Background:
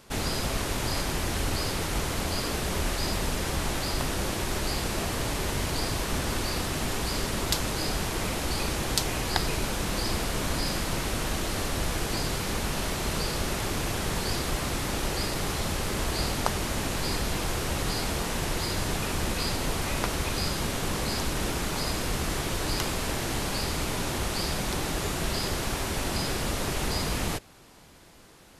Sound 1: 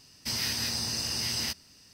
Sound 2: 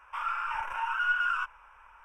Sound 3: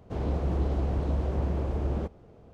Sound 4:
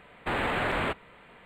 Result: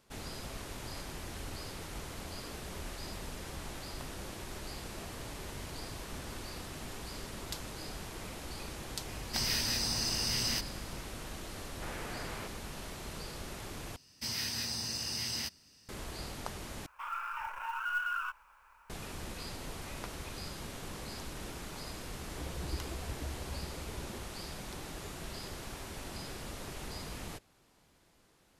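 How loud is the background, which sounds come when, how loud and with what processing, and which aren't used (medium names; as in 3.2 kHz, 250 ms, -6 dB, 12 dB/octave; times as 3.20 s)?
background -14 dB
9.08 s: add 1 -2 dB + hum 50 Hz, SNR 13 dB
11.55 s: add 4 -16 dB
13.96 s: replace with 1 -5.5 dB
16.86 s: replace with 2 -6.5 dB + companded quantiser 6-bit
22.13 s: add 3 -7.5 dB + expander on every frequency bin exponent 3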